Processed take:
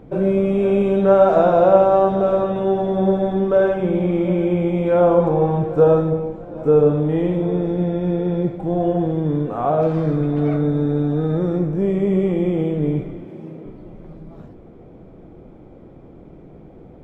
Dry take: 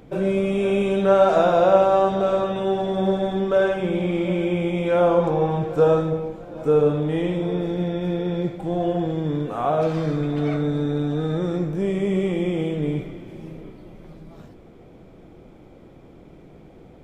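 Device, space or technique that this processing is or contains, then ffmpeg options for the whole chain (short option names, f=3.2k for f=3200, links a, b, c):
through cloth: -filter_complex "[0:a]asettb=1/sr,asplit=3[a][b][c];[a]atrim=end=13.254[d];[b]atrim=start=13.25:end=13.66,asetpts=PTS-STARTPTS,afade=t=in:d=0.004:c=qsin,afade=t=out:st=0.406:d=0.004:c=qsin,highpass=160[e];[c]atrim=start=13.656[f];[d][e]acrossfade=d=0.004:c1=hsin:c2=qsin[g];[g][f]acrossfade=d=0.004:c1=qsin:c2=hsin,highshelf=f=2k:g=-15.5,volume=4.5dB"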